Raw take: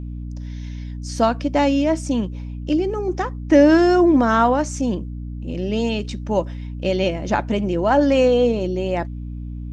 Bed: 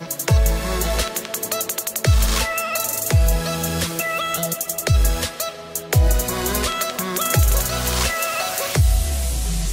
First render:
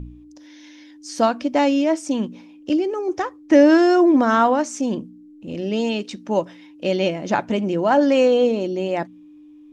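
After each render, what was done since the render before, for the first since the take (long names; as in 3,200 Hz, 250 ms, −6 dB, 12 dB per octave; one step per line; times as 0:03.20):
hum removal 60 Hz, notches 4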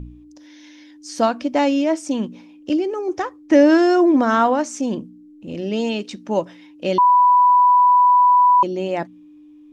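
0:06.98–0:08.63: beep over 989 Hz −9.5 dBFS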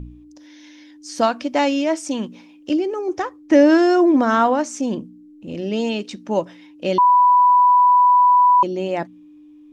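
0:01.21–0:02.71: tilt shelving filter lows −3 dB, about 690 Hz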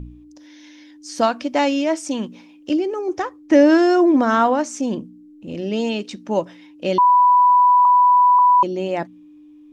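0:07.85–0:08.39: low-pass filter 1,900 Hz 24 dB per octave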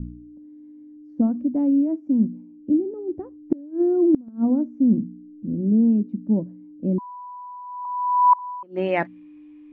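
low-pass filter sweep 230 Hz → 2,200 Hz, 0:07.64–0:08.93
gate with flip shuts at −8 dBFS, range −27 dB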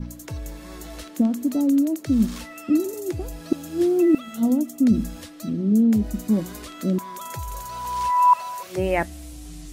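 mix in bed −17.5 dB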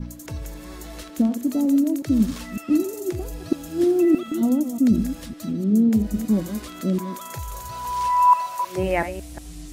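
delay that plays each chunk backwards 184 ms, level −10 dB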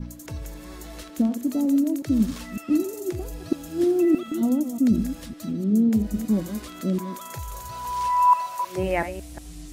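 level −2 dB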